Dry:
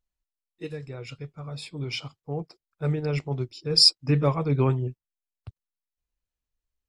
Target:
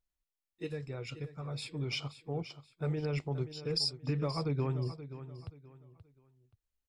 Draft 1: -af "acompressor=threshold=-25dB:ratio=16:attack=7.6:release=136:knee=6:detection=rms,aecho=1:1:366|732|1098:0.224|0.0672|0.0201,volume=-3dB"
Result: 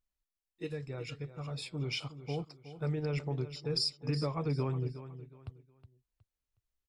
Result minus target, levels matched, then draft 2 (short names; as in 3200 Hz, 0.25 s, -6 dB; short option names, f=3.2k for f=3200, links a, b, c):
echo 0.162 s early
-af "acompressor=threshold=-25dB:ratio=16:attack=7.6:release=136:knee=6:detection=rms,aecho=1:1:528|1056|1584:0.224|0.0672|0.0201,volume=-3dB"